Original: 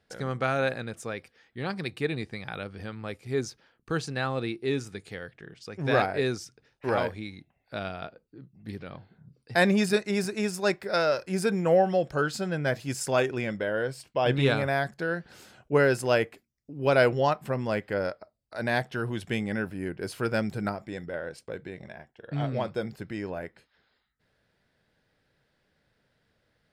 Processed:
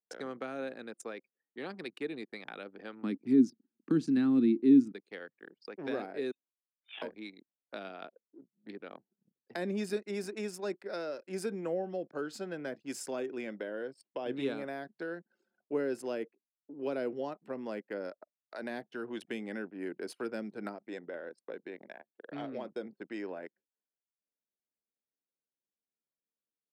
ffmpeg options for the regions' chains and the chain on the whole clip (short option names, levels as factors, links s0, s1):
-filter_complex "[0:a]asettb=1/sr,asplit=3[s0][s1][s2];[s0]atrim=end=3.034[s3];[s1]atrim=start=3.03:end=4.92,asetpts=PTS-STARTPTS,afade=t=in:d=0.004:c=qsin,afade=t=out:st=1.886:d=0.004:c=qsin,highpass=56,lowshelf=f=380:t=q:w=3:g=13[s4];[s2]atrim=start=4.916[s5];[s3][s4]acrossfade=d=0.004:c1=hsin:c2=qsin[s6];[s6][s5]acrossfade=d=0.004:c1=qsin:c2=hsin,asettb=1/sr,asplit=3[s7][s8][s9];[s7]atrim=end=6.314[s10];[s8]atrim=start=6.31:end=7.02,asetpts=PTS-STARTPTS,afade=t=in:d=0.004:c=qsin,afade=t=out:st=0.706:d=0.004:c=qsin,aderivative,asplit=2[s11][s12];[s12]adelay=22,volume=0.708[s13];[s11][s13]amix=inputs=2:normalize=0,atrim=end_sample=31311,lowpass=f=3400:t=q:w=0.5098,lowpass=f=3400:t=q:w=0.6013,lowpass=f=3400:t=q:w=0.9,lowpass=f=3400:t=q:w=2.563,afreqshift=-4000[s14];[s9]atrim=start=7.016[s15];[s10][s14]acrossfade=d=0.004:c1=hsin:c2=qsin[s16];[s16][s15]acrossfade=d=0.004:c1=qsin:c2=hsin,anlmdn=0.251,highpass=f=260:w=0.5412,highpass=f=260:w=1.3066,acrossover=split=350[s17][s18];[s18]acompressor=threshold=0.0112:ratio=6[s19];[s17][s19]amix=inputs=2:normalize=0,volume=0.794"